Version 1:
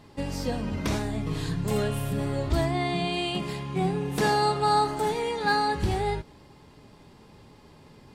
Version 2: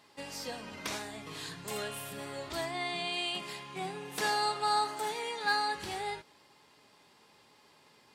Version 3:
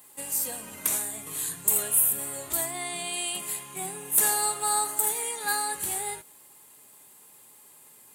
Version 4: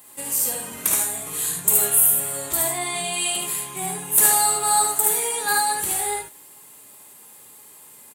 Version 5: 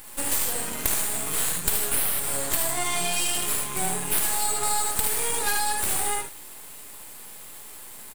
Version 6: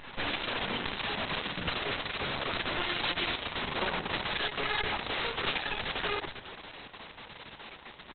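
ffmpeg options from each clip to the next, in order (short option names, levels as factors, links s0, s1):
-af "highpass=f=1300:p=1,volume=0.841"
-af "aexciter=amount=10.9:drive=8.5:freq=7600"
-af "aecho=1:1:56|73:0.447|0.708,volume=1.68"
-filter_complex "[0:a]asplit=2[s0][s1];[s1]alimiter=limit=0.237:level=0:latency=1:release=36,volume=1.06[s2];[s0][s2]amix=inputs=2:normalize=0,aeval=exprs='max(val(0),0)':c=same,acompressor=threshold=0.0891:ratio=6,volume=1.19"
-af "aresample=11025,aeval=exprs='0.0398*(abs(mod(val(0)/0.0398+3,4)-2)-1)':c=same,aresample=44100,aecho=1:1:275:0.188,volume=1.78" -ar 48000 -c:a libopus -b:a 6k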